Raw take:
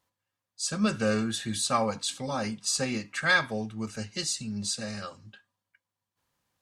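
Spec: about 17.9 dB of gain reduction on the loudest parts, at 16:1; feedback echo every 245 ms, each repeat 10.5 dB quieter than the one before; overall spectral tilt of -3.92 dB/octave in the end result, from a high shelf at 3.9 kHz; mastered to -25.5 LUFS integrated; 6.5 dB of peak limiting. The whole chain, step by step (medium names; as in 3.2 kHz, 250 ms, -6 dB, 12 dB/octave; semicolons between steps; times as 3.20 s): treble shelf 3.9 kHz -9 dB; compression 16:1, threshold -38 dBFS; peak limiter -34 dBFS; feedback delay 245 ms, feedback 30%, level -10.5 dB; trim +18 dB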